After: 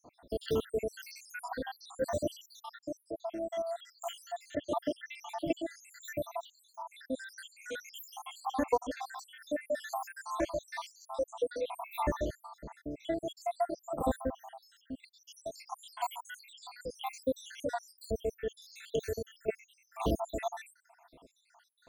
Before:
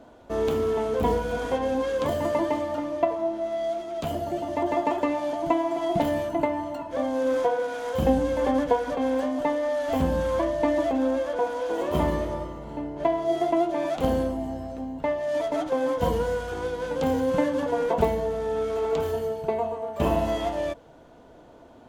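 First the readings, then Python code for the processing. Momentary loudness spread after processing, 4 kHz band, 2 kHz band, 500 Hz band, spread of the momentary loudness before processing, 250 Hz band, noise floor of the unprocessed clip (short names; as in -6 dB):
14 LU, -5.5 dB, -8.5 dB, -12.5 dB, 6 LU, -13.0 dB, -50 dBFS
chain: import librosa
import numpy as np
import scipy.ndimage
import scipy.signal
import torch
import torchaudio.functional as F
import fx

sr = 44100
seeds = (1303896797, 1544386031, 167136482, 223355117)

y = fx.spec_dropout(x, sr, seeds[0], share_pct=83)
y = fx.high_shelf(y, sr, hz=2600.0, db=10.0)
y = y * librosa.db_to_amplitude(-3.5)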